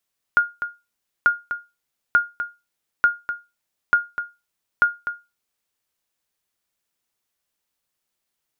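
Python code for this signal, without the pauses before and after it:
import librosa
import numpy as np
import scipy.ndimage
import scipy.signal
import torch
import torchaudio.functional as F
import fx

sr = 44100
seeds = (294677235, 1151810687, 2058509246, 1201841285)

y = fx.sonar_ping(sr, hz=1420.0, decay_s=0.24, every_s=0.89, pings=6, echo_s=0.25, echo_db=-10.5, level_db=-7.5)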